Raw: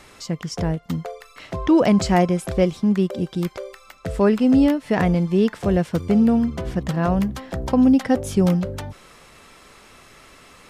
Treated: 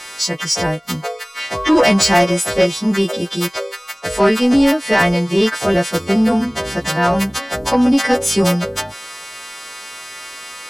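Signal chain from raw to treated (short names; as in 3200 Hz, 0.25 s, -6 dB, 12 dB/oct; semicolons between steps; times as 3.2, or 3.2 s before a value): frequency quantiser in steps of 2 st; overdrive pedal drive 15 dB, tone 6300 Hz, clips at -5 dBFS; gain +2 dB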